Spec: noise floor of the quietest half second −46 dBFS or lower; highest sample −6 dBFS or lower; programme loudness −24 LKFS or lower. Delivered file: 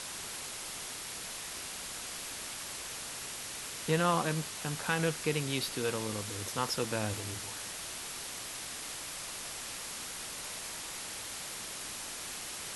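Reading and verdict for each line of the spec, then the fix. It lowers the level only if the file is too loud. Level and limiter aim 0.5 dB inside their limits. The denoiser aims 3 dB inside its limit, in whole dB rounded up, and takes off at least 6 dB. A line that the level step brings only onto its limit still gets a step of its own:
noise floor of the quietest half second −42 dBFS: out of spec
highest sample −15.0 dBFS: in spec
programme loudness −36.0 LKFS: in spec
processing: broadband denoise 7 dB, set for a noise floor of −42 dBFS

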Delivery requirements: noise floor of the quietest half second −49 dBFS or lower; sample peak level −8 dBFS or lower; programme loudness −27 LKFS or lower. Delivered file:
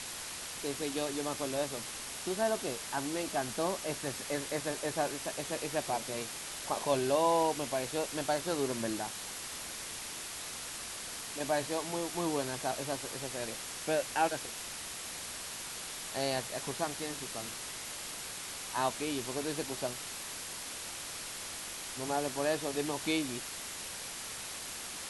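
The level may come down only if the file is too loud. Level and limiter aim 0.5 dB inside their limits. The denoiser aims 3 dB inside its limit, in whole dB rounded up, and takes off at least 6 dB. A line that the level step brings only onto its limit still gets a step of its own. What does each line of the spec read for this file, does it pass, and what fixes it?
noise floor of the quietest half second −42 dBFS: out of spec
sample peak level −16.0 dBFS: in spec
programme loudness −35.5 LKFS: in spec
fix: broadband denoise 10 dB, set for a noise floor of −42 dBFS

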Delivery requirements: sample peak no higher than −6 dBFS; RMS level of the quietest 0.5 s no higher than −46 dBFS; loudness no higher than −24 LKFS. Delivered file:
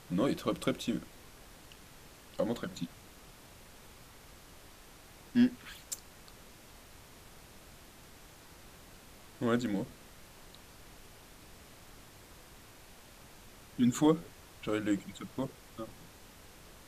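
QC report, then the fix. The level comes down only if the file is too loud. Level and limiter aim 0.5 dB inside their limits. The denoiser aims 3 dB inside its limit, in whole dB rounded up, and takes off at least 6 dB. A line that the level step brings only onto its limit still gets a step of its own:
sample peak −14.0 dBFS: in spec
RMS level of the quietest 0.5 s −55 dBFS: in spec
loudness −34.0 LKFS: in spec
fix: no processing needed

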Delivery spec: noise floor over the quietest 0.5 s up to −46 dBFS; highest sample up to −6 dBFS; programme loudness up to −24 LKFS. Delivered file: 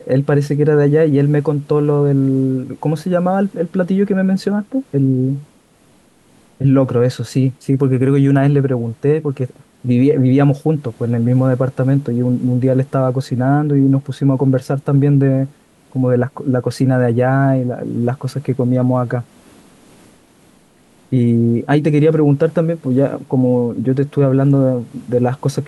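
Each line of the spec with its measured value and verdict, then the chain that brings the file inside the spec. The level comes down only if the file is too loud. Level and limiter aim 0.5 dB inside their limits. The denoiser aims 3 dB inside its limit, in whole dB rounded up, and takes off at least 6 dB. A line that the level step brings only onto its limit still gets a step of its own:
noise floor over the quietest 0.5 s −51 dBFS: in spec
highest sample −4.0 dBFS: out of spec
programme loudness −15.5 LKFS: out of spec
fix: level −9 dB

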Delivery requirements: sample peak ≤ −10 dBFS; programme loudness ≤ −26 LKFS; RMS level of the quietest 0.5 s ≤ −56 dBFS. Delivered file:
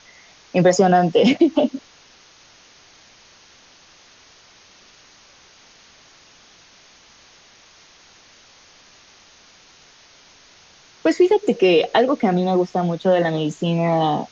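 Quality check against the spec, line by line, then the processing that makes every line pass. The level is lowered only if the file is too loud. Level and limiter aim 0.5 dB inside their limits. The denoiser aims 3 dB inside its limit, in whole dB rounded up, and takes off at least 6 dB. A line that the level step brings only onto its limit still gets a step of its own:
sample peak −4.0 dBFS: out of spec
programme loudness −18.0 LKFS: out of spec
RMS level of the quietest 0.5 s −50 dBFS: out of spec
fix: level −8.5 dB

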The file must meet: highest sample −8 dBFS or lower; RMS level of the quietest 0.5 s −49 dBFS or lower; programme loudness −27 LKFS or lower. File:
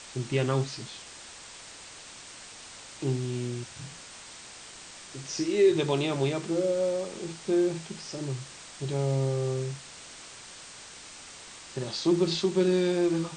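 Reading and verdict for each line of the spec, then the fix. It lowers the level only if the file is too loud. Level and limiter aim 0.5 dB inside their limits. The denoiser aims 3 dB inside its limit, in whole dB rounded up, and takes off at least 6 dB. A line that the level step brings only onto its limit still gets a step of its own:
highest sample −12.5 dBFS: in spec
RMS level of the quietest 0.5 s −46 dBFS: out of spec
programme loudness −28.5 LKFS: in spec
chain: broadband denoise 6 dB, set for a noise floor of −46 dBFS

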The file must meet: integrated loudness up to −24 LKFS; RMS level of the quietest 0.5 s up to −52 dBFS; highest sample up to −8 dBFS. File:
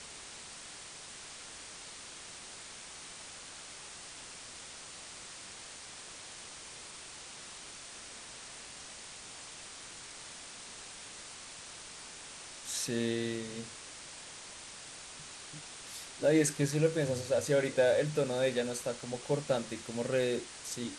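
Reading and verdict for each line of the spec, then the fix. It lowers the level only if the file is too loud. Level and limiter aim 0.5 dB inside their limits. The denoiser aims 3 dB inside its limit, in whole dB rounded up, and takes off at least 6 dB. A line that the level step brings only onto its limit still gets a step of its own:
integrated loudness −37.0 LKFS: in spec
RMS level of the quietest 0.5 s −48 dBFS: out of spec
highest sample −15.5 dBFS: in spec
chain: broadband denoise 7 dB, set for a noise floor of −48 dBFS

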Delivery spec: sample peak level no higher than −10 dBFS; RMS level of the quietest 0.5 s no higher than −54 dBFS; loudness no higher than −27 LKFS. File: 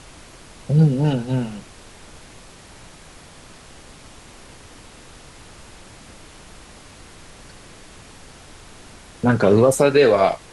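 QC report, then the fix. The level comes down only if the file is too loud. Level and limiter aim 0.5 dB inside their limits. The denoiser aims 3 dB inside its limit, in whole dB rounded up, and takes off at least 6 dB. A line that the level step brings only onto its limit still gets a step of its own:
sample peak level −4.5 dBFS: out of spec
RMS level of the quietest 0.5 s −44 dBFS: out of spec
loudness −17.5 LKFS: out of spec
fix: broadband denoise 6 dB, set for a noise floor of −44 dBFS
level −10 dB

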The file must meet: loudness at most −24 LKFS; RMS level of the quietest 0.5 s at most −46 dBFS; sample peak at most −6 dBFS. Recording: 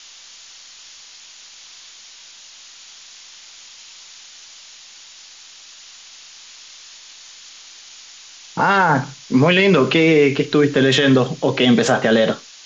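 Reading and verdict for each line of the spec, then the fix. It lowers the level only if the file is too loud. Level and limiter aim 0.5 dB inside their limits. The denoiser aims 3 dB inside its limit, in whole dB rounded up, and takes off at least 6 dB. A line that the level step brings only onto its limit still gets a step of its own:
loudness −15.5 LKFS: out of spec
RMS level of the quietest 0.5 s −42 dBFS: out of spec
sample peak −5.0 dBFS: out of spec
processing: level −9 dB

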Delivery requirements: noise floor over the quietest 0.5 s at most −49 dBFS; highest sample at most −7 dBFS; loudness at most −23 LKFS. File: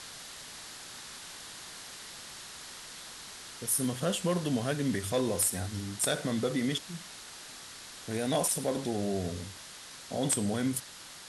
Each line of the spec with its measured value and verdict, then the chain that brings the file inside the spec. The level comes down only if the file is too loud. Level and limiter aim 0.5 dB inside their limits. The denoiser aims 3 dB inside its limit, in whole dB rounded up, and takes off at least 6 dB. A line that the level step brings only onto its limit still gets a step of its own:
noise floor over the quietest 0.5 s −47 dBFS: out of spec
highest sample −15.0 dBFS: in spec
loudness −33.0 LKFS: in spec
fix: broadband denoise 6 dB, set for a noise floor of −47 dBFS

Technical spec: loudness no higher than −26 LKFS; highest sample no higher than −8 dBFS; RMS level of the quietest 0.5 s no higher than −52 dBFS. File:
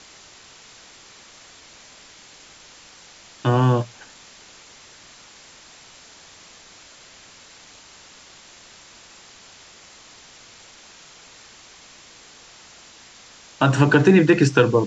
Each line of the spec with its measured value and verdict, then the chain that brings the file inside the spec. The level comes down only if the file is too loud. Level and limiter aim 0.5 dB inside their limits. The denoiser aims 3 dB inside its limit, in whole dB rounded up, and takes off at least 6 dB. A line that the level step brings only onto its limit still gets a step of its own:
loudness −17.5 LKFS: out of spec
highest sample −3.5 dBFS: out of spec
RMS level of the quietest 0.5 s −47 dBFS: out of spec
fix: level −9 dB

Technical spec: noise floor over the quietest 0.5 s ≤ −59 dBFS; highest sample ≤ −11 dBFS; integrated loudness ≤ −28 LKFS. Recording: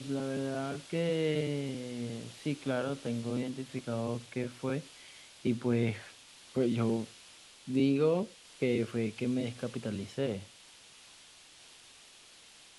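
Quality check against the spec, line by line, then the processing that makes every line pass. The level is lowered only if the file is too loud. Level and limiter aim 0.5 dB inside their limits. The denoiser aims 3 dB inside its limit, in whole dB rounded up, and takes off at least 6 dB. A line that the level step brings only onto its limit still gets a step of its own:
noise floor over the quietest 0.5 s −56 dBFS: out of spec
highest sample −17.5 dBFS: in spec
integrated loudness −34.0 LKFS: in spec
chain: broadband denoise 6 dB, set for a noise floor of −56 dBFS

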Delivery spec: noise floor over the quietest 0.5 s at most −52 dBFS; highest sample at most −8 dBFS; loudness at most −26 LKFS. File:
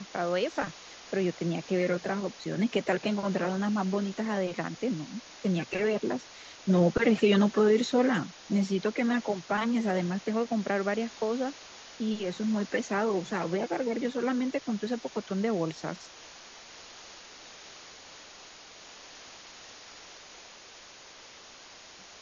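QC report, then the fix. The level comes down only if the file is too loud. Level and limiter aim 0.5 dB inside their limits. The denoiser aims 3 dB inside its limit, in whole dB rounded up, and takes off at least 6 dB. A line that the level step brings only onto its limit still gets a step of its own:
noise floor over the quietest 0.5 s −50 dBFS: out of spec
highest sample −12.0 dBFS: in spec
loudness −29.5 LKFS: in spec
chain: broadband denoise 6 dB, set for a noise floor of −50 dBFS

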